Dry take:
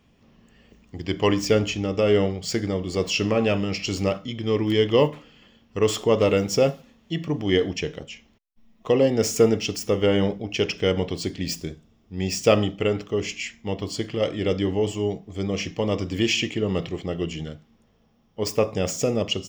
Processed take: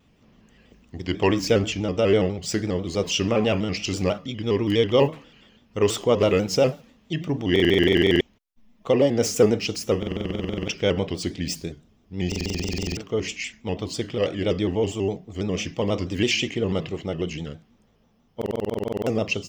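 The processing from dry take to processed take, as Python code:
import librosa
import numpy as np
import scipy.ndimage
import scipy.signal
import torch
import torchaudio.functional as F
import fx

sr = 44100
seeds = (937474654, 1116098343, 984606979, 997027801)

y = fx.buffer_glitch(x, sr, at_s=(7.51, 9.98, 12.27, 18.37), block=2048, repeats=14)
y = fx.vibrato_shape(y, sr, shape='square', rate_hz=6.1, depth_cents=100.0)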